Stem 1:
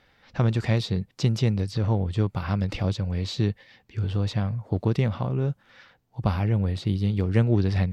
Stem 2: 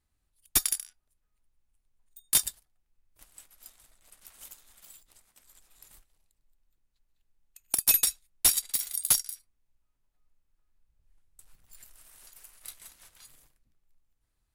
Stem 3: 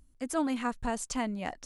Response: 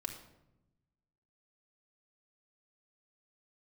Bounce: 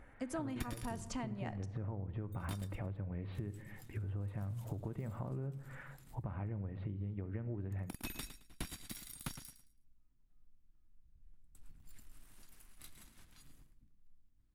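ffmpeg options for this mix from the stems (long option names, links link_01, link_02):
-filter_complex "[0:a]lowpass=frequency=2200:width=0.5412,lowpass=frequency=2200:width=1.3066,acompressor=threshold=-34dB:ratio=5,volume=-2dB,asplit=2[link_01][link_02];[link_02]volume=-5dB[link_03];[1:a]acrossover=split=3400[link_04][link_05];[link_05]acompressor=threshold=-31dB:ratio=4:attack=1:release=60[link_06];[link_04][link_06]amix=inputs=2:normalize=0,lowshelf=frequency=370:width_type=q:width=1.5:gain=10,adelay=50,volume=1dB,asplit=2[link_07][link_08];[link_08]volume=-6dB[link_09];[2:a]volume=-3dB,asplit=3[link_10][link_11][link_12];[link_11]volume=-5dB[link_13];[link_12]apad=whole_len=643853[link_14];[link_07][link_14]sidechaingate=range=-33dB:threshold=-53dB:ratio=16:detection=peak[link_15];[3:a]atrim=start_sample=2205[link_16];[link_03][link_13]amix=inputs=2:normalize=0[link_17];[link_17][link_16]afir=irnorm=-1:irlink=0[link_18];[link_09]aecho=0:1:109|218|327|436:1|0.24|0.0576|0.0138[link_19];[link_01][link_15][link_10][link_18][link_19]amix=inputs=5:normalize=0,highshelf=frequency=4000:gain=-9,acompressor=threshold=-38dB:ratio=6"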